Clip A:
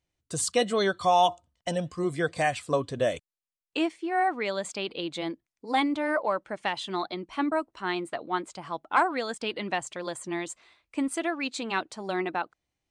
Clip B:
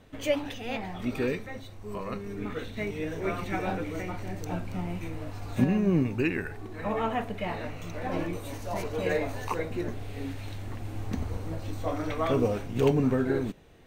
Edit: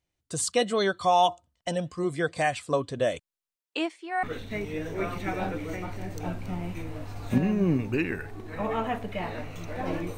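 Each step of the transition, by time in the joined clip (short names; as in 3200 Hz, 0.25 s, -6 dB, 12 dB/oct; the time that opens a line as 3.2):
clip A
3.54–4.23 HPF 190 Hz -> 750 Hz
4.23 switch to clip B from 2.49 s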